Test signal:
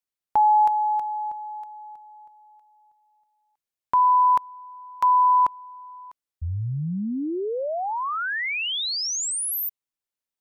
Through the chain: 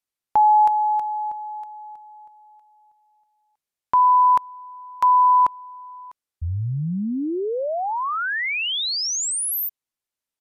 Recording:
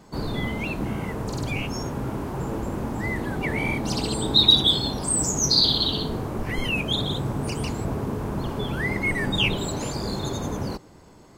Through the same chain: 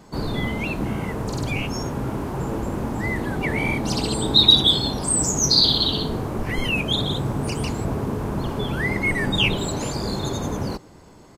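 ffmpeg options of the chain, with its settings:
ffmpeg -i in.wav -af "aresample=32000,aresample=44100,volume=2.5dB" out.wav

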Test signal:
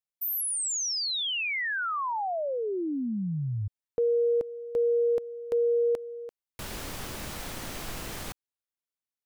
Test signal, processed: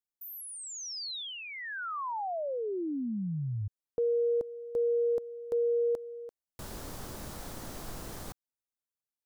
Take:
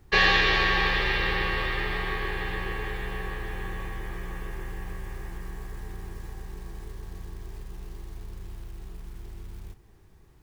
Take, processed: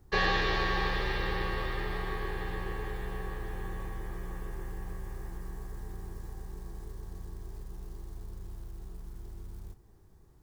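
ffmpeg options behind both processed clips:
ffmpeg -i in.wav -filter_complex "[0:a]equalizer=frequency=2500:width_type=o:width=1.3:gain=-9.5,acrossover=split=4400[link_01][link_02];[link_02]acompressor=threshold=-41dB:ratio=4:attack=1:release=60[link_03];[link_01][link_03]amix=inputs=2:normalize=0,volume=-3dB" out.wav

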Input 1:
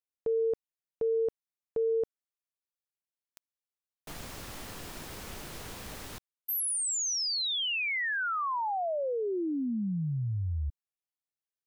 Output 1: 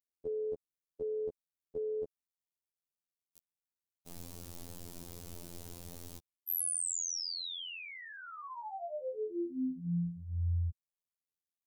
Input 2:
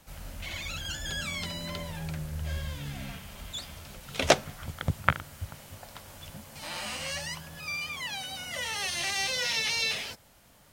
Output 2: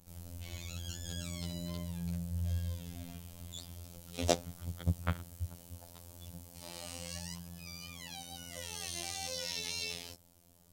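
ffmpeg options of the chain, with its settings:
ffmpeg -i in.wav -af "afftfilt=real='hypot(re,im)*cos(PI*b)':imag='0':win_size=2048:overlap=0.75,equalizer=frequency=1700:width_type=o:width=2.4:gain=-15,volume=1dB" out.wav

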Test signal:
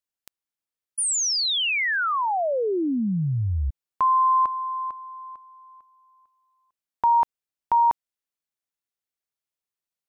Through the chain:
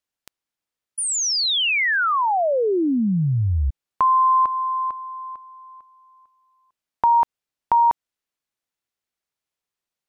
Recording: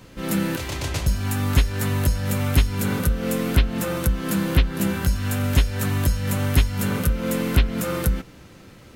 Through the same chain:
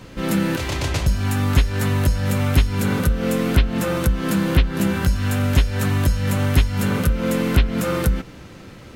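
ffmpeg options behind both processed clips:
ffmpeg -i in.wav -filter_complex "[0:a]asplit=2[link_01][link_02];[link_02]acompressor=threshold=-26dB:ratio=6:attack=12:release=283:detection=peak,volume=-0.5dB[link_03];[link_01][link_03]amix=inputs=2:normalize=0,highshelf=frequency=8500:gain=-8" out.wav

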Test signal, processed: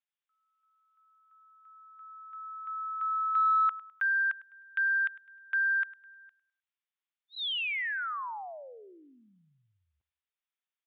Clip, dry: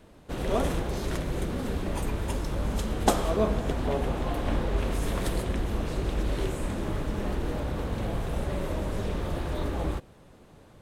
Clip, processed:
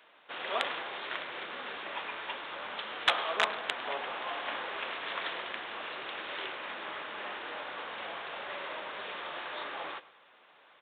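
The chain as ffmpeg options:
ffmpeg -i in.wav -af "aresample=8000,aeval=exprs='(mod(5.31*val(0)+1,2)-1)/5.31':channel_layout=same,aresample=44100,highpass=1200,aecho=1:1:103|206|309:0.126|0.0441|0.0154,asoftclip=type=tanh:threshold=-15.5dB,volume=5dB" out.wav

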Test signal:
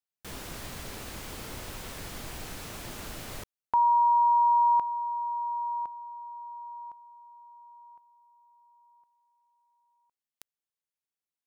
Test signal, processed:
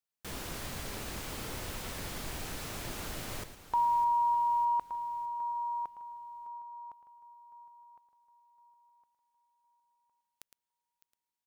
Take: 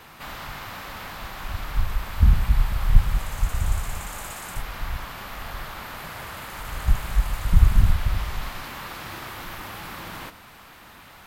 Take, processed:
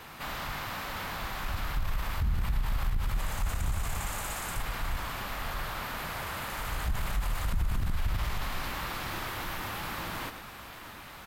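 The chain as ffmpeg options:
ffmpeg -i in.wav -filter_complex "[0:a]asplit=2[link_01][link_02];[link_02]aecho=0:1:111:0.251[link_03];[link_01][link_03]amix=inputs=2:normalize=0,acompressor=threshold=-24dB:ratio=10:attack=0.14:release=47:knee=6:detection=peak,asplit=2[link_04][link_05];[link_05]aecho=0:1:607|1214|1821|2428|3035:0.178|0.0871|0.0427|0.0209|0.0103[link_06];[link_04][link_06]amix=inputs=2:normalize=0" out.wav

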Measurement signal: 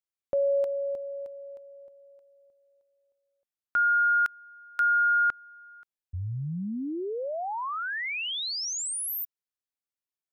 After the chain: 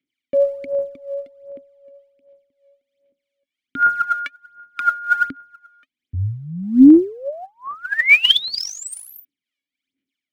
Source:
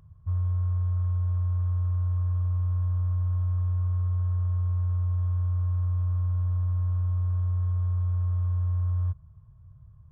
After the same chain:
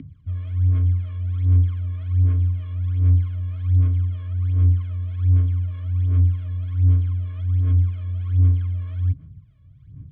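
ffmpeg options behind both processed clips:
ffmpeg -i in.wav -filter_complex "[0:a]asplit=3[link_01][link_02][link_03];[link_01]bandpass=frequency=270:width_type=q:width=8,volume=0dB[link_04];[link_02]bandpass=frequency=2290:width_type=q:width=8,volume=-6dB[link_05];[link_03]bandpass=frequency=3010:width_type=q:width=8,volume=-9dB[link_06];[link_04][link_05][link_06]amix=inputs=3:normalize=0,acrossover=split=400[link_07][link_08];[link_07]aeval=exprs='val(0)*(1-0.5/2+0.5/2*cos(2*PI*3.2*n/s))':channel_layout=same[link_09];[link_08]aeval=exprs='val(0)*(1-0.5/2-0.5/2*cos(2*PI*3.2*n/s))':channel_layout=same[link_10];[link_09][link_10]amix=inputs=2:normalize=0,aphaser=in_gain=1:out_gain=1:delay=1.8:decay=0.78:speed=1.3:type=sinusoidal,alimiter=level_in=26.5dB:limit=-1dB:release=50:level=0:latency=1,volume=-1dB" out.wav

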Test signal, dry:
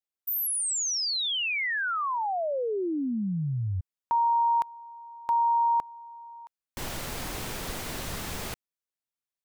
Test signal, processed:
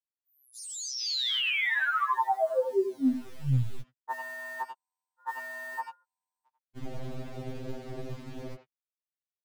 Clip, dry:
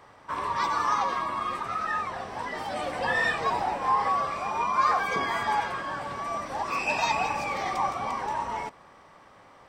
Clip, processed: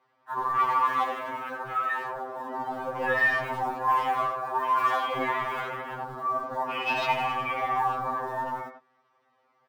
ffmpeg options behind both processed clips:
ffmpeg -i in.wav -filter_complex "[0:a]afwtdn=0.0251,lowpass=4700,asplit=2[link_01][link_02];[link_02]acrusher=bits=5:mode=log:mix=0:aa=0.000001,volume=-8dB[link_03];[link_01][link_03]amix=inputs=2:normalize=0,asplit=2[link_04][link_05];[link_05]adelay=90,highpass=300,lowpass=3400,asoftclip=type=hard:threshold=-20.5dB,volume=-7dB[link_06];[link_04][link_06]amix=inputs=2:normalize=0,acrossover=split=130|750[link_07][link_08][link_09];[link_07]acrusher=bits=5:dc=4:mix=0:aa=0.000001[link_10];[link_10][link_08][link_09]amix=inputs=3:normalize=0,afftfilt=real='re*2.45*eq(mod(b,6),0)':imag='im*2.45*eq(mod(b,6),0)':win_size=2048:overlap=0.75" out.wav

